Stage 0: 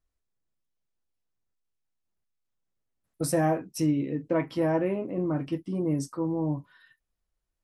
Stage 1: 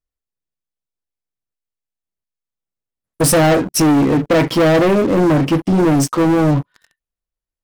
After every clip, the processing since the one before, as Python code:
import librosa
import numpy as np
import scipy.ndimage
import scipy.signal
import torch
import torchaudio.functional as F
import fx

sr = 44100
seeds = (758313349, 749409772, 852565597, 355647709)

y = fx.peak_eq(x, sr, hz=490.0, db=3.0, octaves=0.26)
y = fx.leveller(y, sr, passes=5)
y = y * librosa.db_to_amplitude(3.5)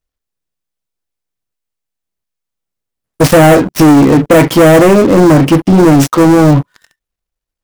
y = fx.dead_time(x, sr, dead_ms=0.063)
y = y * librosa.db_to_amplitude(7.5)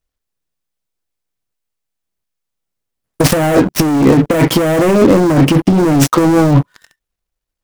y = fx.over_compress(x, sr, threshold_db=-7.0, ratio=-0.5)
y = y * librosa.db_to_amplitude(-1.5)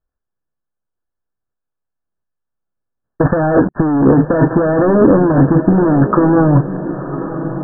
y = fx.brickwall_lowpass(x, sr, high_hz=1800.0)
y = fx.echo_diffused(y, sr, ms=1085, feedback_pct=57, wet_db=-11.5)
y = y * librosa.db_to_amplitude(-1.0)